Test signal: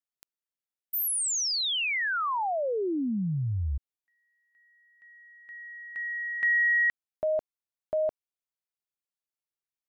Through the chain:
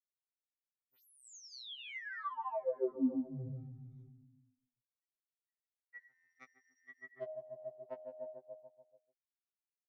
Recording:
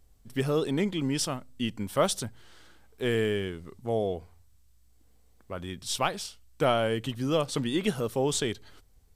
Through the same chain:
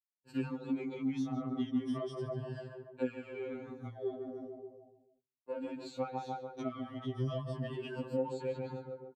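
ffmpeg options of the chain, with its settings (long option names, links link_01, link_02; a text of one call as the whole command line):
ffmpeg -i in.wav -filter_complex "[0:a]afftfilt=real='re*pow(10,18/40*sin(2*PI*(1.3*log(max(b,1)*sr/1024/100)/log(2)-(-0.38)*(pts-256)/sr)))':imag='im*pow(10,18/40*sin(2*PI*(1.3*log(max(b,1)*sr/1024/100)/log(2)-(-0.38)*(pts-256)/sr)))':win_size=1024:overlap=0.75,agate=range=-59dB:threshold=-46dB:ratio=16:release=423:detection=peak,asplit=2[link_01][link_02];[link_02]adelay=144,lowpass=frequency=840:poles=1,volume=-4.5dB,asplit=2[link_03][link_04];[link_04]adelay=144,lowpass=frequency=840:poles=1,volume=0.55,asplit=2[link_05][link_06];[link_06]adelay=144,lowpass=frequency=840:poles=1,volume=0.55,asplit=2[link_07][link_08];[link_08]adelay=144,lowpass=frequency=840:poles=1,volume=0.55,asplit=2[link_09][link_10];[link_10]adelay=144,lowpass=frequency=840:poles=1,volume=0.55,asplit=2[link_11][link_12];[link_12]adelay=144,lowpass=frequency=840:poles=1,volume=0.55,asplit=2[link_13][link_14];[link_14]adelay=144,lowpass=frequency=840:poles=1,volume=0.55[link_15];[link_01][link_03][link_05][link_07][link_09][link_11][link_13][link_15]amix=inputs=8:normalize=0,acompressor=threshold=-33dB:ratio=16:attack=48:release=94:knee=1:detection=rms,asoftclip=type=tanh:threshold=-25dB,acrossover=split=400[link_16][link_17];[link_17]acompressor=threshold=-50dB:ratio=6:attack=11:release=505:knee=2.83:detection=peak[link_18];[link_16][link_18]amix=inputs=2:normalize=0,highpass=190,lowpass=4100,adynamicequalizer=threshold=0.001:dfrequency=1000:dqfactor=0.95:tfrequency=1000:tqfactor=0.95:attack=5:release=100:ratio=0.417:range=2.5:mode=boostabove:tftype=bell,flanger=delay=1.1:depth=2.5:regen=31:speed=0.8:shape=sinusoidal,afftfilt=real='re*2.45*eq(mod(b,6),0)':imag='im*2.45*eq(mod(b,6),0)':win_size=2048:overlap=0.75,volume=9dB" out.wav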